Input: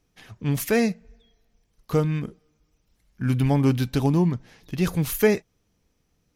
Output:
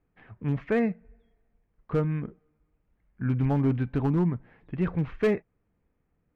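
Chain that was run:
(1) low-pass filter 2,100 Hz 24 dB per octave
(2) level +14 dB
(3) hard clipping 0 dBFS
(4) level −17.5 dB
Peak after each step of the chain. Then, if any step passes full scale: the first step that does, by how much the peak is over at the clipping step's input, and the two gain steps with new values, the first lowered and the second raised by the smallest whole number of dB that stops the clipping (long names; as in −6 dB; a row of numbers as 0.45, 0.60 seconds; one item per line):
−8.5, +5.5, 0.0, −17.5 dBFS
step 2, 5.5 dB
step 2 +8 dB, step 4 −11.5 dB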